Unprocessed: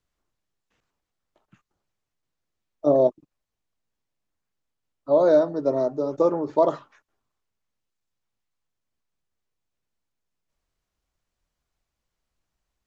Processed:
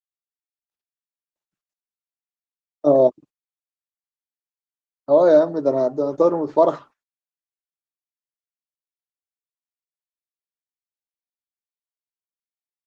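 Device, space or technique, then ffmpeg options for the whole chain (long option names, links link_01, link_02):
video call: -af "highpass=frequency=110:poles=1,dynaudnorm=framelen=970:gausssize=3:maxgain=5dB,agate=range=-32dB:threshold=-41dB:ratio=16:detection=peak" -ar 48000 -c:a libopus -b:a 24k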